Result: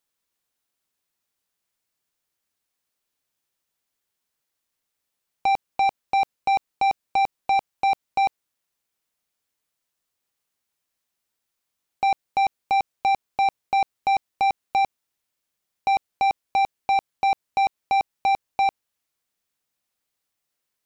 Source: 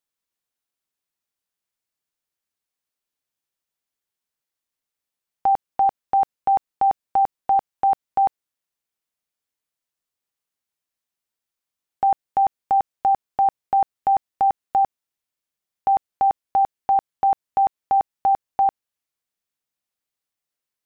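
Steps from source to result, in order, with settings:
soft clipping −23 dBFS, distortion −12 dB
level +5.5 dB

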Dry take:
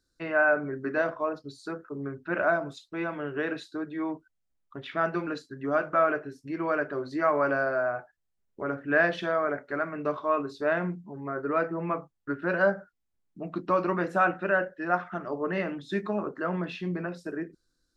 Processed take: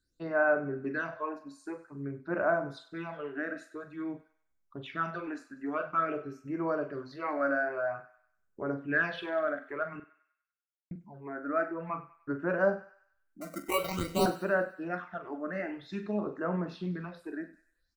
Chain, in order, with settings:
0:13.41–0:14.26: sample-rate reduction 1,700 Hz, jitter 0%
all-pass phaser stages 8, 0.5 Hz, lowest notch 120–4,100 Hz
0:10.00–0:10.91: silence
double-tracking delay 43 ms −11 dB
feedback echo with a high-pass in the loop 97 ms, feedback 51%, high-pass 890 Hz, level −15 dB
level −3 dB

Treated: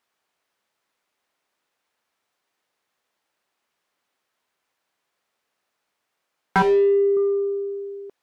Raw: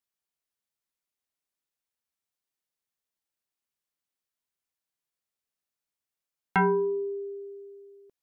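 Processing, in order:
mid-hump overdrive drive 23 dB, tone 1,100 Hz, clips at −17 dBFS
0:06.62–0:07.17: phaser with its sweep stopped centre 470 Hz, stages 4
level +7 dB

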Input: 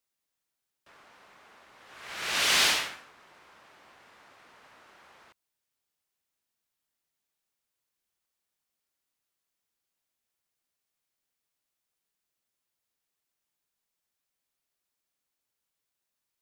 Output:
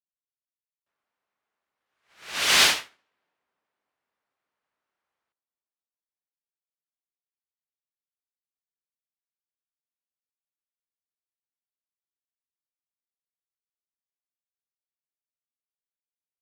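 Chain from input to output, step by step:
on a send: tape delay 295 ms, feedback 75%, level −16 dB, low-pass 1,400 Hz
on the sum: expander for the loud parts 2.5 to 1, over −46 dBFS
level +6.5 dB

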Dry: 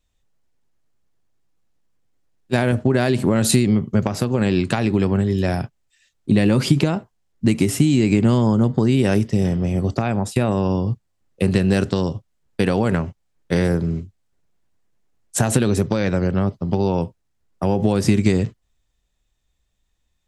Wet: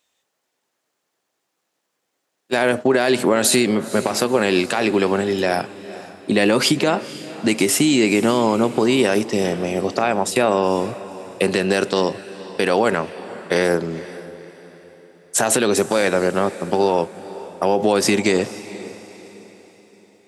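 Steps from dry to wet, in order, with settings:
high-pass filter 420 Hz 12 dB per octave
brickwall limiter −14.5 dBFS, peak gain reduction 9 dB
feedback delay with all-pass diffusion 487 ms, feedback 43%, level −16 dB
level +8.5 dB

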